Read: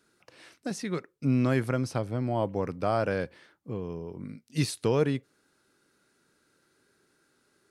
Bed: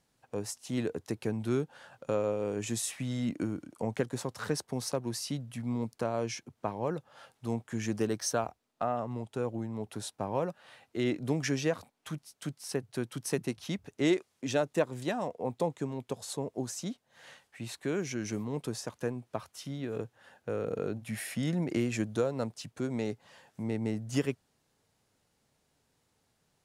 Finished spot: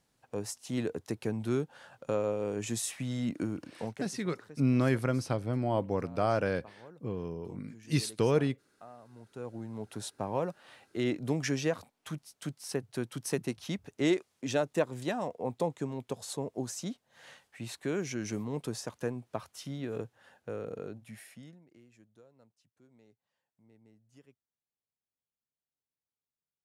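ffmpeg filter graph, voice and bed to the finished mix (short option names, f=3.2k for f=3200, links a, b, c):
-filter_complex "[0:a]adelay=3350,volume=-1.5dB[a];[1:a]volume=18dB,afade=t=out:st=3.7:d=0.4:silence=0.11885,afade=t=in:st=9.1:d=0.94:silence=0.11885,afade=t=out:st=19.9:d=1.7:silence=0.0354813[b];[a][b]amix=inputs=2:normalize=0"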